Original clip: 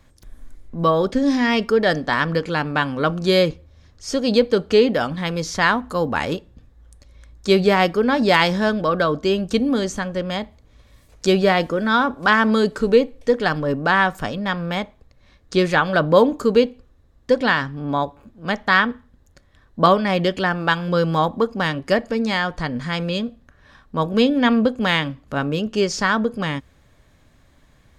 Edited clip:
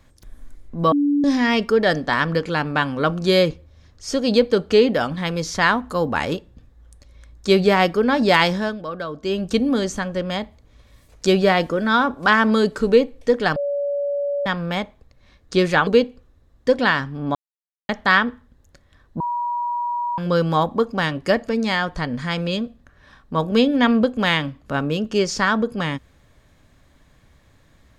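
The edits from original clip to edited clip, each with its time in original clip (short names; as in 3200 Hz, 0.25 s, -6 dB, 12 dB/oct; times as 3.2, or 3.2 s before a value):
0.92–1.24 bleep 288 Hz -15 dBFS
8.47–9.47 dip -10 dB, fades 0.31 s
13.56–14.46 bleep 570 Hz -20 dBFS
15.87–16.49 cut
17.97–18.51 mute
19.82–20.8 bleep 961 Hz -21 dBFS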